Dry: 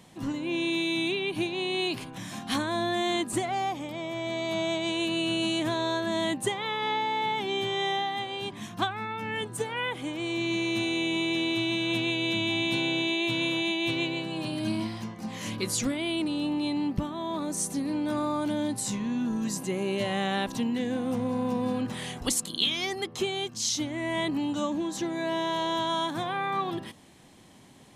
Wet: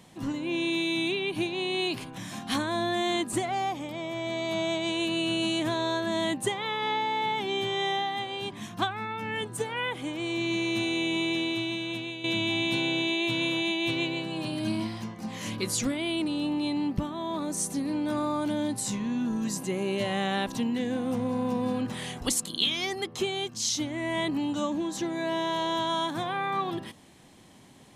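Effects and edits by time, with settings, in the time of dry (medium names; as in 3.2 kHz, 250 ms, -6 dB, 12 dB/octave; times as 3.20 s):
11.27–12.24 s: fade out, to -11 dB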